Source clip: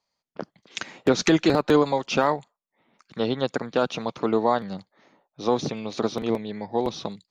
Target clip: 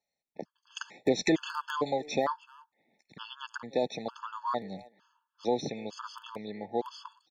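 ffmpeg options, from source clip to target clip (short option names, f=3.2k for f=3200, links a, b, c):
-filter_complex "[0:a]lowshelf=f=170:g=-8,asplit=2[a][b];[b]adelay=300,highpass=300,lowpass=3.4k,asoftclip=type=hard:threshold=-18dB,volume=-21dB[c];[a][c]amix=inputs=2:normalize=0,afftfilt=real='re*gt(sin(2*PI*1.1*pts/sr)*(1-2*mod(floor(b*sr/1024/870),2)),0)':imag='im*gt(sin(2*PI*1.1*pts/sr)*(1-2*mod(floor(b*sr/1024/870),2)),0)':win_size=1024:overlap=0.75,volume=-4.5dB"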